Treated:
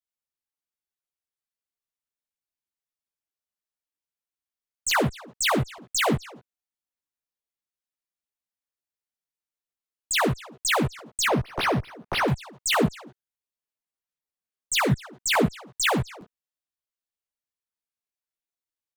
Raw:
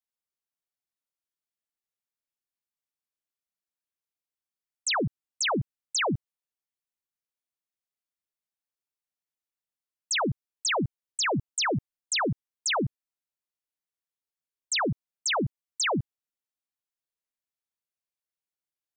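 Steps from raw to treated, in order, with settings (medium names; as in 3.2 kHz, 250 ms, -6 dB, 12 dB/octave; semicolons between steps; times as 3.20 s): in parallel at -9 dB: fuzz box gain 49 dB, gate -59 dBFS; on the sum: speakerphone echo 240 ms, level -15 dB; dynamic bell 5.4 kHz, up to -6 dB, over -36 dBFS, Q 2.3; chorus voices 6, 0.59 Hz, delay 15 ms, depth 2.4 ms; crackling interface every 0.87 s, samples 512, repeat, from 0.54 s; 11.28–12.28 s: decimation joined by straight lines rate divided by 6×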